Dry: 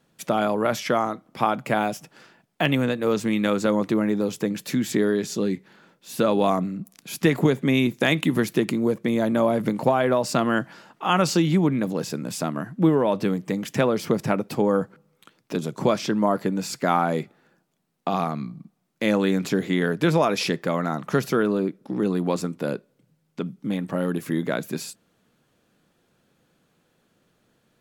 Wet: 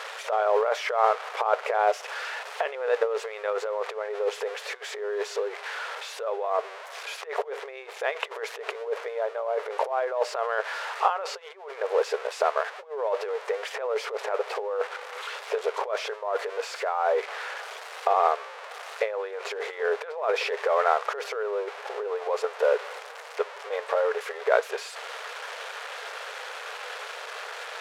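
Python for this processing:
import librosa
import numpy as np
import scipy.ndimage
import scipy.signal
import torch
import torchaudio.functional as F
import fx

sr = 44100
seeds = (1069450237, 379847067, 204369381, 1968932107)

y = x + 0.5 * 10.0 ** (-17.0 / 20.0) * np.diff(np.sign(x), prepend=np.sign(x[:1]))
y = scipy.signal.sosfilt(scipy.signal.butter(2, 1500.0, 'lowpass', fs=sr, output='sos'), y)
y = fx.over_compress(y, sr, threshold_db=-25.0, ratio=-0.5)
y = fx.brickwall_highpass(y, sr, low_hz=400.0)
y = y * librosa.db_to_amplitude(4.5)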